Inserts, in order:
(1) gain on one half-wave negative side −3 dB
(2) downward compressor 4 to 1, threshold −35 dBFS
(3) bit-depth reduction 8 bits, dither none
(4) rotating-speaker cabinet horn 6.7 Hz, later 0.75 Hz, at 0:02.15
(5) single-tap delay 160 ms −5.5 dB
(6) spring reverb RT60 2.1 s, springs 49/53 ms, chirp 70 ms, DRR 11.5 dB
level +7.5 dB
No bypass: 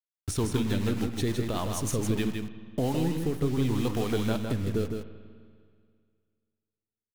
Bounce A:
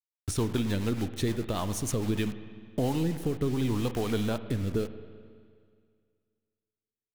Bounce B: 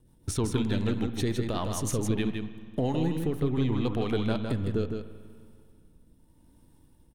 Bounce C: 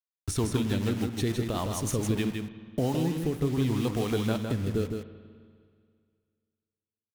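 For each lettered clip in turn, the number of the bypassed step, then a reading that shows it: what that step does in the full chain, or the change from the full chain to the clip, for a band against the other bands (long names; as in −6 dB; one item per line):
5, echo-to-direct ratio −4.0 dB to −11.5 dB
3, distortion level −18 dB
1, distortion level −15 dB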